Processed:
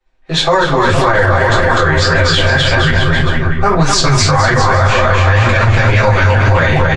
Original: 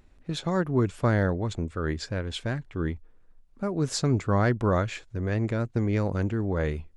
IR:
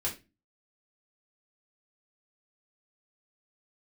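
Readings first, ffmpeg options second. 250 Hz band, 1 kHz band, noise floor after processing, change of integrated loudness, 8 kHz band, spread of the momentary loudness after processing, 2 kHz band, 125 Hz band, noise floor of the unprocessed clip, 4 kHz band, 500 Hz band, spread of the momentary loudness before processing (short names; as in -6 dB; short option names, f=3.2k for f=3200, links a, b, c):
+9.0 dB, +21.5 dB, -18 dBFS, +16.5 dB, +19.5 dB, 3 LU, +24.5 dB, +15.5 dB, -57 dBFS, +24.0 dB, +15.5 dB, 8 LU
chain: -filter_complex "[0:a]acrossover=split=530 7200:gain=0.178 1 0.1[a][b][c];[a][b][c]amix=inputs=3:normalize=0,agate=range=-33dB:threshold=-56dB:ratio=3:detection=peak[d];[1:a]atrim=start_sample=2205[e];[d][e]afir=irnorm=-1:irlink=0,acrossover=split=370|2500[f][g][h];[f]asoftclip=type=hard:threshold=-33dB[i];[i][g][h]amix=inputs=3:normalize=0,dynaudnorm=f=210:g=5:m=9dB,asubboost=boost=7.5:cutoff=120,aecho=1:1:7.5:0.55,aecho=1:1:250|462.5|643.1|796.7|927.2:0.631|0.398|0.251|0.158|0.1,acrossover=split=100|660[j][k][l];[j]acompressor=threshold=-28dB:ratio=4[m];[k]acompressor=threshold=-27dB:ratio=4[n];[l]acompressor=threshold=-23dB:ratio=4[o];[m][n][o]amix=inputs=3:normalize=0,flanger=delay=3.3:depth=9.6:regen=-35:speed=1.8:shape=sinusoidal,alimiter=level_in=21dB:limit=-1dB:release=50:level=0:latency=1,volume=-1dB"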